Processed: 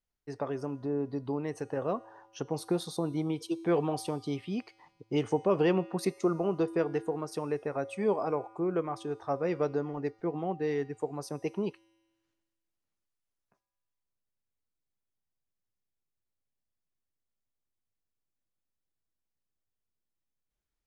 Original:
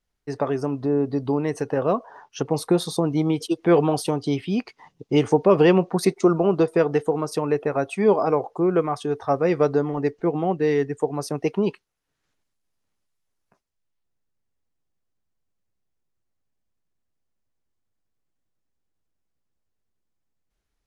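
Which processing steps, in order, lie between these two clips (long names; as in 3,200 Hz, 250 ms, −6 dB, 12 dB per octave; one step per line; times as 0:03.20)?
tuned comb filter 110 Hz, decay 1.5 s, harmonics odd, mix 60%
level −2.5 dB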